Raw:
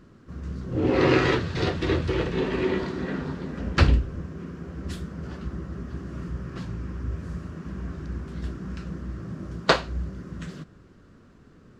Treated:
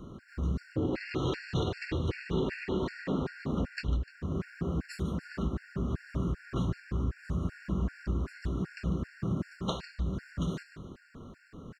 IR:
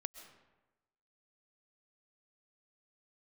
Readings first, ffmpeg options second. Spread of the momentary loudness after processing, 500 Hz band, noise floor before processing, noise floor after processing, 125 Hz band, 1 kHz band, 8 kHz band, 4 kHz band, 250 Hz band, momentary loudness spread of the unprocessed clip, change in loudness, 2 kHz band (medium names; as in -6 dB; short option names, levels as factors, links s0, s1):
4 LU, -9.0 dB, -53 dBFS, -58 dBFS, -4.0 dB, -10.5 dB, no reading, -10.0 dB, -4.5 dB, 15 LU, -6.5 dB, -10.5 dB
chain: -filter_complex "[0:a]acrossover=split=260|3000[s0][s1][s2];[s1]acompressor=threshold=0.0316:ratio=2[s3];[s0][s3][s2]amix=inputs=3:normalize=0,alimiter=limit=0.119:level=0:latency=1:release=467,acompressor=threshold=0.0224:ratio=6,aecho=1:1:149|298|447|596:0.251|0.105|0.0443|0.0186,asplit=2[s4][s5];[1:a]atrim=start_sample=2205,lowpass=4600[s6];[s5][s6]afir=irnorm=-1:irlink=0,volume=0.299[s7];[s4][s7]amix=inputs=2:normalize=0,afftfilt=real='re*gt(sin(2*PI*2.6*pts/sr)*(1-2*mod(floor(b*sr/1024/1400),2)),0)':imag='im*gt(sin(2*PI*2.6*pts/sr)*(1-2*mod(floor(b*sr/1024/1400),2)),0)':win_size=1024:overlap=0.75,volume=1.78"